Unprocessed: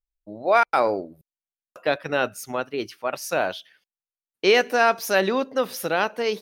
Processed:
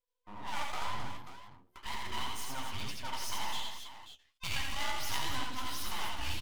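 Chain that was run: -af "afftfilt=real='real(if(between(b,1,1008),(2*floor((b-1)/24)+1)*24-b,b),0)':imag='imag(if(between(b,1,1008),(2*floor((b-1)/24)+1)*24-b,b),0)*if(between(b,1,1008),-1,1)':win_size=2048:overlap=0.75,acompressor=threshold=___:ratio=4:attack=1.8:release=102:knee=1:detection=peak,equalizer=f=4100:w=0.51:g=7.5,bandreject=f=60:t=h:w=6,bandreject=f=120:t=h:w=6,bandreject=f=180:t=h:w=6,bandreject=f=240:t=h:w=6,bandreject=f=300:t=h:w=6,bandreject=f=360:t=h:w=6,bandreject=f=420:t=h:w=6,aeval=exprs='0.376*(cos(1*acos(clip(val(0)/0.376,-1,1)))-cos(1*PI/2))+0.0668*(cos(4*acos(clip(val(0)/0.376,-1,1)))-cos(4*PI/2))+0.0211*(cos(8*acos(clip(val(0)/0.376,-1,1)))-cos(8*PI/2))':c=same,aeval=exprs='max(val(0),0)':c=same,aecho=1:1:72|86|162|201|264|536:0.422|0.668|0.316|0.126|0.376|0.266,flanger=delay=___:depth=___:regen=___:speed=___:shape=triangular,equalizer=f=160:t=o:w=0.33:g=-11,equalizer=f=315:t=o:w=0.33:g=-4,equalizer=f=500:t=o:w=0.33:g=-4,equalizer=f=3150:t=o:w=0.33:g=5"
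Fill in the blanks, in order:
-20dB, 5, 9.8, -35, 2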